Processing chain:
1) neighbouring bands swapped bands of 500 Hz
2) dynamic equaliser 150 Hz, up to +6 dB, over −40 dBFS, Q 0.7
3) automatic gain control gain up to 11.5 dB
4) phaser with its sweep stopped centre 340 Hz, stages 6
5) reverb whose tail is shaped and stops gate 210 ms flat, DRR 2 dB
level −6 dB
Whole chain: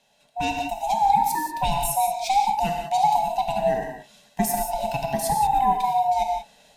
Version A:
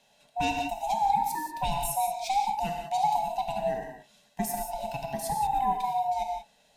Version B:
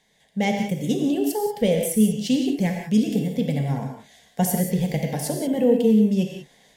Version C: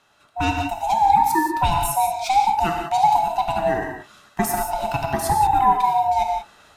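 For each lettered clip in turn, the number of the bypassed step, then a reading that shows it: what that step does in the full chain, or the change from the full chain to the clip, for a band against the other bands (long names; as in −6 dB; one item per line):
3, change in integrated loudness −6.0 LU
1, 1 kHz band −17.0 dB
4, 8 kHz band −3.5 dB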